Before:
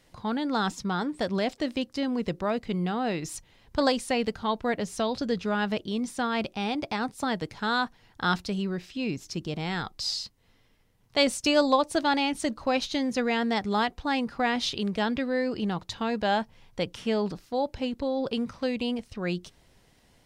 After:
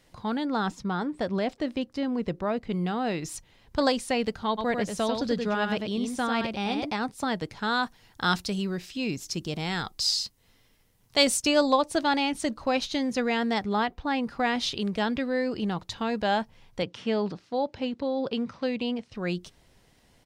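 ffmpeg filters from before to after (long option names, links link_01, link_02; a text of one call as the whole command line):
ffmpeg -i in.wav -filter_complex "[0:a]asettb=1/sr,asplit=3[link_01][link_02][link_03];[link_01]atrim=end=0.454[link_04];[link_02]atrim=start=0.45:end=2.72,asetpts=PTS-STARTPTS,afade=type=in:duration=0.004:curve=qsin,afade=type=out:start_time=2.266:duration=0.004:curve=qsin,highshelf=frequency=3100:gain=-8.5[link_05];[link_03]atrim=start=2.716[link_06];[link_04][link_05]acrossfade=duration=0.004:curve1=hsin:curve2=qsin[link_07];[link_07][link_06]acrossfade=duration=0.004:curve1=qsin:curve2=hsin,asplit=3[link_08][link_09][link_10];[link_08]afade=type=out:start_time=4.57:duration=0.02[link_11];[link_09]aecho=1:1:95:0.562,afade=type=in:start_time=4.57:duration=0.02,afade=type=out:start_time=6.91:duration=0.02[link_12];[link_10]afade=type=in:start_time=6.91:duration=0.02[link_13];[link_11][link_12][link_13]amix=inputs=3:normalize=0,asettb=1/sr,asplit=3[link_14][link_15][link_16];[link_14]atrim=end=7.834[link_17];[link_15]atrim=start=7.83:end=11.42,asetpts=PTS-STARTPTS,afade=type=in:duration=0.004:curve=qsin,afade=type=out:start_time=3.586:duration=0.004:curve=qsin,highshelf=frequency=5000:gain=10[link_18];[link_16]atrim=start=11.416[link_19];[link_17][link_18]acrossfade=duration=0.004:curve1=hsin:curve2=qsin[link_20];[link_20][link_19]acrossfade=duration=0.004:curve1=qsin:curve2=hsin,asettb=1/sr,asplit=3[link_21][link_22][link_23];[link_21]atrim=end=13.644[link_24];[link_22]atrim=start=13.64:end=14.24,asetpts=PTS-STARTPTS,afade=type=in:duration=0.004:curve=qsin,afade=type=out:start_time=0.596:duration=0.004:curve=qsin,equalizer=frequency=8400:width=0.57:gain=-9.5[link_25];[link_23]atrim=start=14.236[link_26];[link_24][link_25]acrossfade=duration=0.004:curve1=hsin:curve2=qsin[link_27];[link_27][link_26]acrossfade=duration=0.004:curve1=qsin:curve2=hsin,asettb=1/sr,asplit=3[link_28][link_29][link_30];[link_28]atrim=end=16.824[link_31];[link_29]atrim=start=16.82:end=19.14,asetpts=PTS-STARTPTS,afade=type=in:duration=0.004:curve=qsin,afade=type=out:start_time=2.316:duration=0.004:curve=qsin,highpass=110,lowpass=5200[link_32];[link_30]atrim=start=19.136[link_33];[link_31][link_32]acrossfade=duration=0.004:curve1=hsin:curve2=qsin[link_34];[link_34][link_33]acrossfade=duration=0.004:curve1=qsin:curve2=hsin" out.wav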